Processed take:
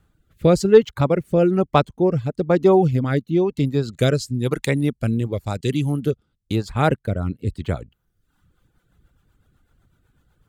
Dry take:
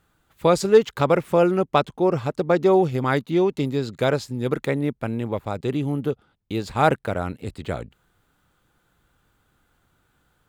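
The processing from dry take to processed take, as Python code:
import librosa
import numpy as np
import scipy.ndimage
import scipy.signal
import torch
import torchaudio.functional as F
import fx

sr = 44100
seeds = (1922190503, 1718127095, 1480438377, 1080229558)

y = fx.dereverb_blind(x, sr, rt60_s=0.82)
y = fx.peak_eq(y, sr, hz=8200.0, db=13.0, octaves=2.5, at=(3.88, 6.54), fade=0.02)
y = fx.rotary_switch(y, sr, hz=1.0, then_hz=8.0, switch_at_s=8.05)
y = fx.low_shelf(y, sr, hz=230.0, db=11.5)
y = F.gain(torch.from_numpy(y), 1.0).numpy()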